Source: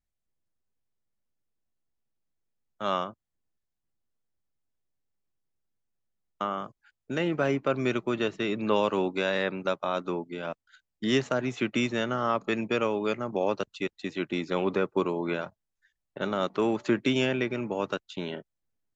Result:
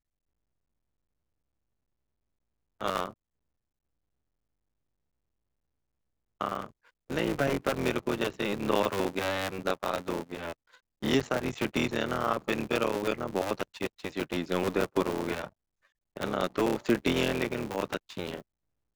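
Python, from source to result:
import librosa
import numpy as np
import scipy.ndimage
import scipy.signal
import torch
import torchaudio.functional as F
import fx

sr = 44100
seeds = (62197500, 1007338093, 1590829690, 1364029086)

y = fx.cycle_switch(x, sr, every=3, mode='muted')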